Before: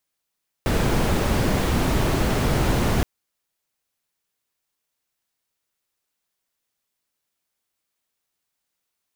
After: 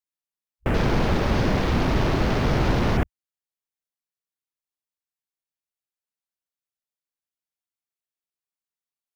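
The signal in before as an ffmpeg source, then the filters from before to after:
-f lavfi -i "anoisesrc=color=brown:amplitude=0.468:duration=2.37:sample_rate=44100:seed=1"
-af "afwtdn=0.0178"

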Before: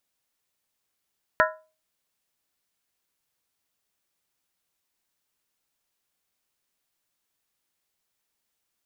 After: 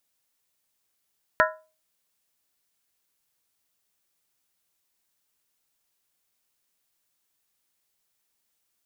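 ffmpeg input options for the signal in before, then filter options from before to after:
-f lavfi -i "aevalsrc='0.126*pow(10,-3*t/0.34)*sin(2*PI*629*t)+0.119*pow(10,-3*t/0.269)*sin(2*PI*1002.6*t)+0.112*pow(10,-3*t/0.233)*sin(2*PI*1343.5*t)+0.106*pow(10,-3*t/0.224)*sin(2*PI*1444.2*t)+0.1*pow(10,-3*t/0.209)*sin(2*PI*1668.7*t)+0.0944*pow(10,-3*t/0.199)*sin(2*PI*1835.4*t)':duration=0.63:sample_rate=44100"
-af "highshelf=frequency=5200:gain=5"

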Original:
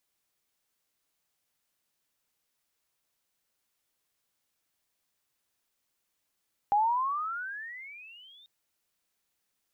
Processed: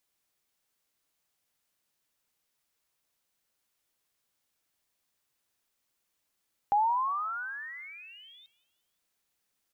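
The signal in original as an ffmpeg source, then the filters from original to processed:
-f lavfi -i "aevalsrc='pow(10,(-20.5-32.5*t/1.74)/20)*sin(2*PI*801*1.74/(26.5*log(2)/12)*(exp(26.5*log(2)/12*t/1.74)-1))':duration=1.74:sample_rate=44100"
-filter_complex "[0:a]asplit=4[link_01][link_02][link_03][link_04];[link_02]adelay=177,afreqshift=-44,volume=-22dB[link_05];[link_03]adelay=354,afreqshift=-88,volume=-28.6dB[link_06];[link_04]adelay=531,afreqshift=-132,volume=-35.1dB[link_07];[link_01][link_05][link_06][link_07]amix=inputs=4:normalize=0"

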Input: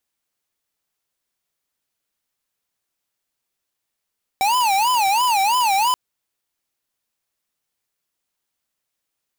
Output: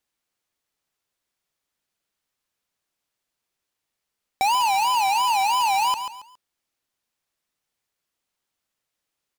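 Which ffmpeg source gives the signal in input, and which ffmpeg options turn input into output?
-f lavfi -i "aevalsrc='0.133*(2*lt(mod((890*t-120/(2*PI*3)*sin(2*PI*3*t)),1),0.5)-1)':duration=1.53:sample_rate=44100"
-filter_complex "[0:a]asplit=2[link_01][link_02];[link_02]aecho=0:1:138|276|414:0.266|0.0798|0.0239[link_03];[link_01][link_03]amix=inputs=2:normalize=0,acompressor=threshold=-19dB:ratio=6,highshelf=frequency=9100:gain=-7"

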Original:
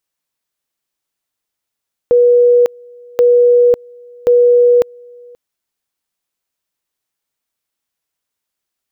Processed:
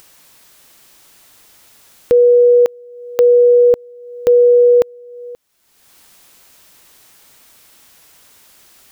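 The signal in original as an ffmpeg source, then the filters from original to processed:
-f lavfi -i "aevalsrc='pow(10,(-5.5-29*gte(mod(t,1.08),0.55))/20)*sin(2*PI*485*t)':duration=3.24:sample_rate=44100"
-af "acompressor=mode=upward:threshold=-22dB:ratio=2.5"

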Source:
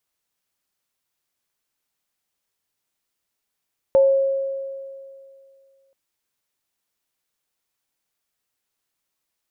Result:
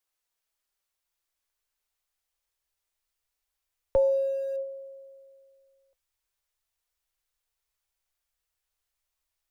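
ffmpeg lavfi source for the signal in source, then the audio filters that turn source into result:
-f lavfi -i "aevalsrc='0.316*pow(10,-3*t/2.36)*sin(2*PI*543*t)+0.0355*pow(10,-3*t/0.42)*sin(2*PI*879*t)':duration=1.98:sample_rate=44100"
-filter_complex "[0:a]acrossover=split=110|290[link_01][link_02][link_03];[link_02]aeval=exprs='val(0)*gte(abs(val(0)),0.00398)':channel_layout=same[link_04];[link_01][link_04][link_03]amix=inputs=3:normalize=0,flanger=delay=3.6:depth=3.4:regen=74:speed=0.28:shape=triangular,asubboost=boost=8.5:cutoff=75"

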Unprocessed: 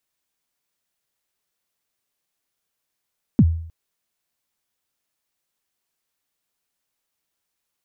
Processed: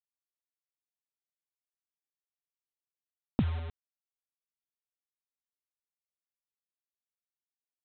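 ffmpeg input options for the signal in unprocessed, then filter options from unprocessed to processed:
-f lavfi -i "aevalsrc='0.447*pow(10,-3*t/0.6)*sin(2*PI*(280*0.052/log(82/280)*(exp(log(82/280)*min(t,0.052)/0.052)-1)+82*max(t-0.052,0)))':duration=0.31:sample_rate=44100"
-af "lowpass=1000,acompressor=threshold=-25dB:ratio=12,aresample=8000,acrusher=bits=6:mix=0:aa=0.000001,aresample=44100"

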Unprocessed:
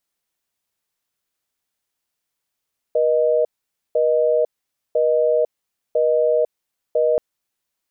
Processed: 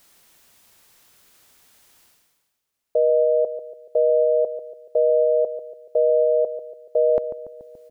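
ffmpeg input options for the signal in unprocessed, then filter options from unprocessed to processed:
-f lavfi -i "aevalsrc='0.141*(sin(2*PI*480*t)+sin(2*PI*620*t))*clip(min(mod(t,1),0.5-mod(t,1))/0.005,0,1)':duration=4.23:sample_rate=44100"
-filter_complex "[0:a]asplit=2[link_01][link_02];[link_02]adelay=143,lowpass=frequency=840:poles=1,volume=-9.5dB,asplit=2[link_03][link_04];[link_04]adelay=143,lowpass=frequency=840:poles=1,volume=0.51,asplit=2[link_05][link_06];[link_06]adelay=143,lowpass=frequency=840:poles=1,volume=0.51,asplit=2[link_07][link_08];[link_08]adelay=143,lowpass=frequency=840:poles=1,volume=0.51,asplit=2[link_09][link_10];[link_10]adelay=143,lowpass=frequency=840:poles=1,volume=0.51,asplit=2[link_11][link_12];[link_12]adelay=143,lowpass=frequency=840:poles=1,volume=0.51[link_13];[link_01][link_03][link_05][link_07][link_09][link_11][link_13]amix=inputs=7:normalize=0,areverse,acompressor=mode=upward:threshold=-36dB:ratio=2.5,areverse"

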